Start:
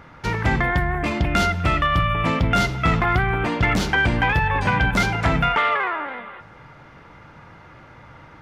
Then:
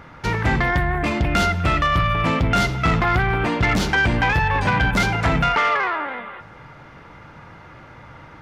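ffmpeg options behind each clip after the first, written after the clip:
-af "asoftclip=type=tanh:threshold=-13.5dB,volume=2.5dB"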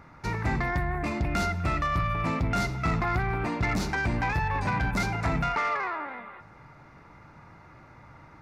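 -af "equalizer=f=500:t=o:w=0.33:g=-5,equalizer=f=1.6k:t=o:w=0.33:g=-4,equalizer=f=3.15k:t=o:w=0.33:g=-12,volume=-7.5dB"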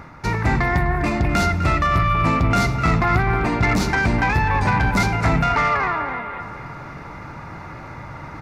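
-filter_complex "[0:a]areverse,acompressor=mode=upward:threshold=-35dB:ratio=2.5,areverse,asplit=2[a][b];[b]adelay=253,lowpass=f=3.9k:p=1,volume=-11dB,asplit=2[c][d];[d]adelay=253,lowpass=f=3.9k:p=1,volume=0.54,asplit=2[e][f];[f]adelay=253,lowpass=f=3.9k:p=1,volume=0.54,asplit=2[g][h];[h]adelay=253,lowpass=f=3.9k:p=1,volume=0.54,asplit=2[i][j];[j]adelay=253,lowpass=f=3.9k:p=1,volume=0.54,asplit=2[k][l];[l]adelay=253,lowpass=f=3.9k:p=1,volume=0.54[m];[a][c][e][g][i][k][m]amix=inputs=7:normalize=0,volume=8.5dB"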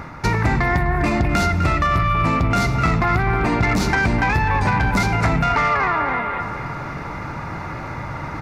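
-af "acompressor=threshold=-21dB:ratio=6,volume=6dB"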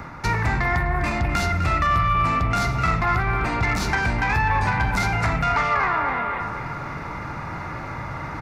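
-filter_complex "[0:a]acrossover=split=130|710|2500[a][b][c][d];[b]asoftclip=type=tanh:threshold=-27dB[e];[c]asplit=2[f][g];[g]adelay=47,volume=-3.5dB[h];[f][h]amix=inputs=2:normalize=0[i];[a][e][i][d]amix=inputs=4:normalize=0,volume=-2.5dB"

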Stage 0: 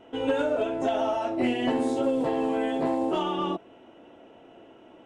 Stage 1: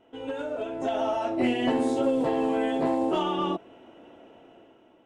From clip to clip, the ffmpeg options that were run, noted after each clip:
-af "dynaudnorm=f=340:g=5:m=9.5dB,volume=-8.5dB"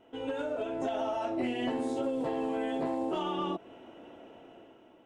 -af "acompressor=threshold=-30dB:ratio=4"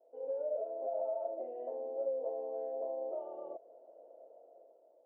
-af "asuperpass=centerf=570:order=4:qfactor=3"

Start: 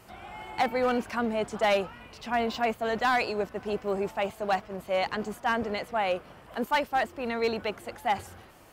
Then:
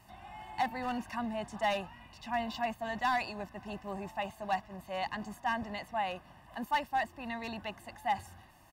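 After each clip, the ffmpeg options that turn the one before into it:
-af "aecho=1:1:1.1:0.8,volume=-8.5dB"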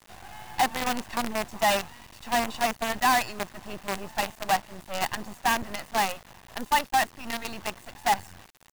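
-af "lowpass=9.7k,acrusher=bits=6:dc=4:mix=0:aa=0.000001,volume=7.5dB"

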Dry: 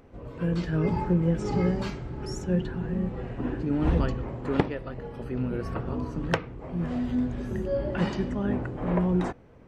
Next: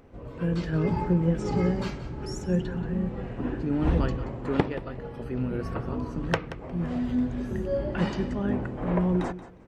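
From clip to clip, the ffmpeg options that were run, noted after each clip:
-af "aecho=1:1:179|358:0.188|0.0283"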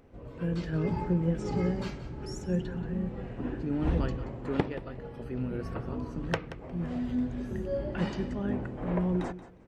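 -af "equalizer=f=1.1k:t=o:w=0.77:g=-2,volume=-4dB"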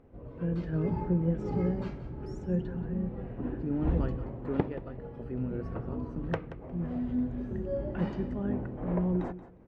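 -af "lowpass=f=1k:p=1"

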